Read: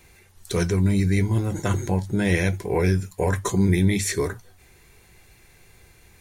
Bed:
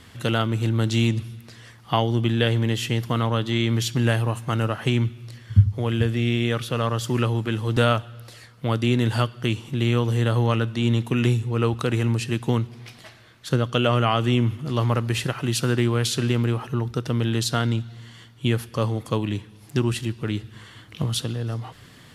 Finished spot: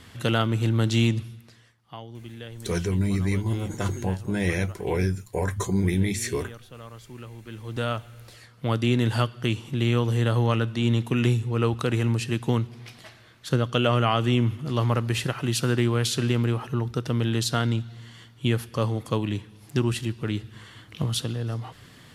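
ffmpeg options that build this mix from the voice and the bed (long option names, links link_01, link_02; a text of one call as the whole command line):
ffmpeg -i stem1.wav -i stem2.wav -filter_complex "[0:a]adelay=2150,volume=-4dB[link_01];[1:a]volume=17dB,afade=type=out:start_time=1.05:duration=0.7:silence=0.11885,afade=type=in:start_time=7.37:duration=1.35:silence=0.133352[link_02];[link_01][link_02]amix=inputs=2:normalize=0" out.wav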